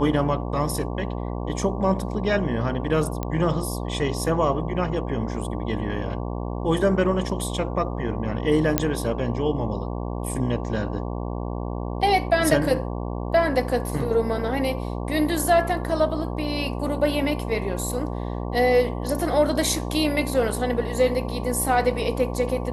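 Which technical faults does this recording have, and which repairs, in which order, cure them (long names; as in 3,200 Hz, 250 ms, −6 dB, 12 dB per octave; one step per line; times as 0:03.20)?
mains buzz 60 Hz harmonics 19 −29 dBFS
0:03.23: click −14 dBFS
0:08.78: click −3 dBFS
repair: click removal
hum removal 60 Hz, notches 19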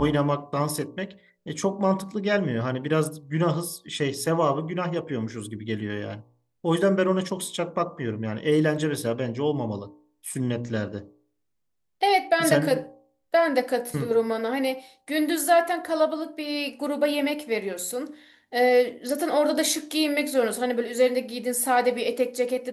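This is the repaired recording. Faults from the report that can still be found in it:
none of them is left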